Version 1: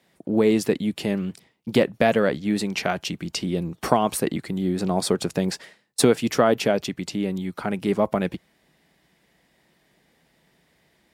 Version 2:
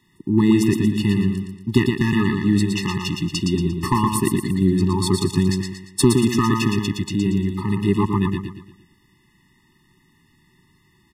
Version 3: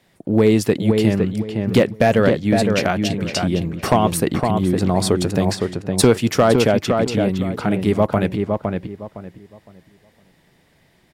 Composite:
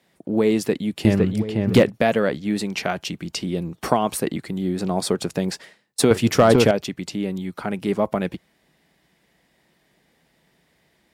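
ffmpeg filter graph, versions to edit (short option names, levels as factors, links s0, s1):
-filter_complex "[2:a]asplit=2[s0][s1];[0:a]asplit=3[s2][s3][s4];[s2]atrim=end=1.052[s5];[s0]atrim=start=1.048:end=1.902[s6];[s3]atrim=start=1.898:end=6.112[s7];[s1]atrim=start=6.108:end=6.712[s8];[s4]atrim=start=6.708[s9];[s5][s6]acrossfade=d=0.004:c1=hsin:c2=hsin[s10];[s10][s7]acrossfade=d=0.004:c1=hsin:c2=hsin[s11];[s11][s8]acrossfade=d=0.004:c1=hsin:c2=hsin[s12];[s12][s9]acrossfade=d=0.004:c1=hsin:c2=hsin"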